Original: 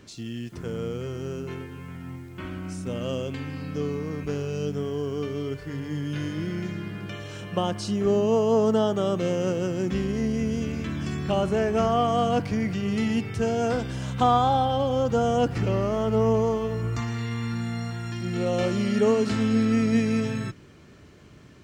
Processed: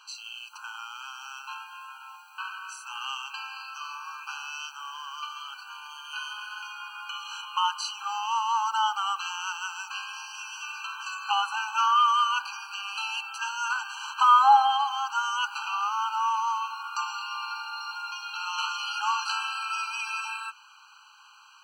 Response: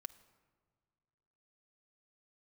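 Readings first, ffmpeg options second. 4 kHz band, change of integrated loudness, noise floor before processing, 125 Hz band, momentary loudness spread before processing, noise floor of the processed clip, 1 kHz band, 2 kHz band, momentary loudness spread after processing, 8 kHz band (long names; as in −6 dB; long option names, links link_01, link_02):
+6.0 dB, −2.0 dB, −49 dBFS, below −40 dB, 13 LU, −53 dBFS, +4.5 dB, +5.5 dB, 16 LU, +3.0 dB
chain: -filter_complex "[0:a]afreqshift=13,asplit=2[link_01][link_02];[1:a]atrim=start_sample=2205,lowpass=6700[link_03];[link_02][link_03]afir=irnorm=-1:irlink=0,volume=1dB[link_04];[link_01][link_04]amix=inputs=2:normalize=0,afftfilt=real='re*eq(mod(floor(b*sr/1024/800),2),1)':imag='im*eq(mod(floor(b*sr/1024/800),2),1)':win_size=1024:overlap=0.75,volume=4.5dB"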